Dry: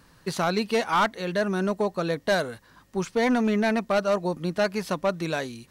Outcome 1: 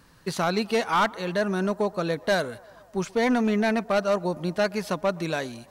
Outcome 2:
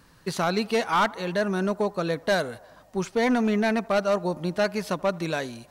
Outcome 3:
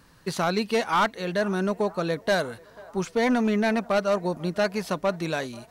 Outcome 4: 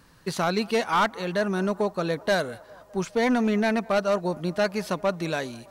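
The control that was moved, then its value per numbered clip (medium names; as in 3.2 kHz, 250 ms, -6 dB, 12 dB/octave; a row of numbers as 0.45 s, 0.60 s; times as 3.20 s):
band-passed feedback delay, time: 125 ms, 80 ms, 490 ms, 204 ms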